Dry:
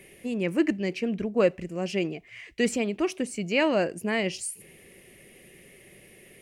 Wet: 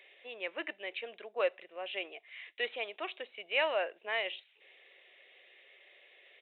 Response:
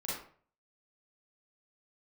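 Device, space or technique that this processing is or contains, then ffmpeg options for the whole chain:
musical greeting card: -af "aresample=8000,aresample=44100,highpass=f=570:w=0.5412,highpass=f=570:w=1.3066,equalizer=f=3700:t=o:w=0.33:g=10.5,volume=0.596"

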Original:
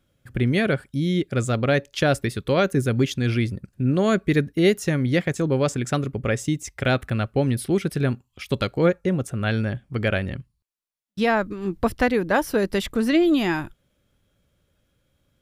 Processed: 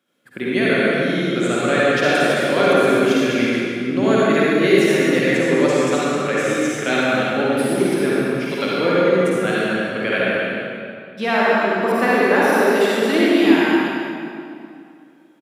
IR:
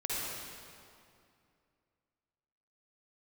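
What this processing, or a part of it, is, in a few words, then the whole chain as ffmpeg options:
stadium PA: -filter_complex "[0:a]highpass=f=200:w=0.5412,highpass=f=200:w=1.3066,equalizer=f=1800:t=o:w=2.3:g=4,aecho=1:1:145.8|262.4:0.355|0.251[s0];[1:a]atrim=start_sample=2205[s1];[s0][s1]afir=irnorm=-1:irlink=0,volume=0.891"

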